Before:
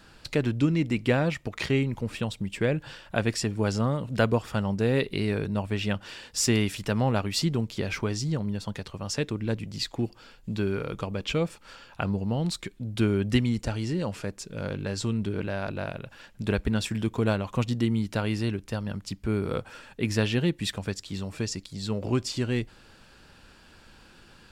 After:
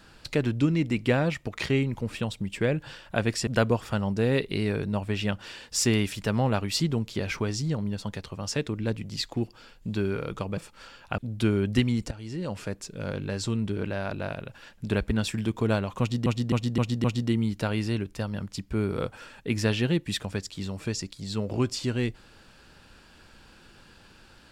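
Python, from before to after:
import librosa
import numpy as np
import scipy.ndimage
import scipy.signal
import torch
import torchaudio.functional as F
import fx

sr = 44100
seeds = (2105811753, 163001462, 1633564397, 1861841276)

y = fx.edit(x, sr, fx.cut(start_s=3.47, length_s=0.62),
    fx.cut(start_s=11.19, length_s=0.26),
    fx.cut(start_s=12.06, length_s=0.69),
    fx.fade_in_from(start_s=13.68, length_s=0.53, floor_db=-15.5),
    fx.repeat(start_s=17.57, length_s=0.26, count=5), tone=tone)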